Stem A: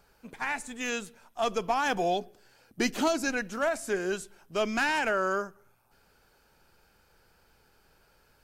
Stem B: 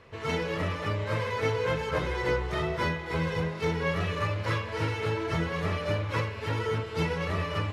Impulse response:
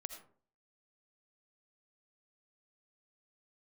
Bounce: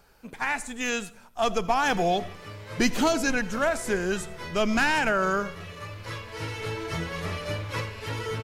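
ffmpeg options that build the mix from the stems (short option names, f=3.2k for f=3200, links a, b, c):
-filter_complex "[0:a]asubboost=boost=3.5:cutoff=190,volume=1.5dB,asplit=3[a][b][c];[b]volume=-5dB[d];[1:a]highshelf=f=3.9k:g=12,adelay=1600,volume=-4.5dB,asplit=2[e][f];[f]volume=-10.5dB[g];[c]apad=whole_len=411377[h];[e][h]sidechaincompress=threshold=-39dB:ratio=8:attack=16:release=1190[i];[2:a]atrim=start_sample=2205[j];[d][g]amix=inputs=2:normalize=0[k];[k][j]afir=irnorm=-1:irlink=0[l];[a][i][l]amix=inputs=3:normalize=0"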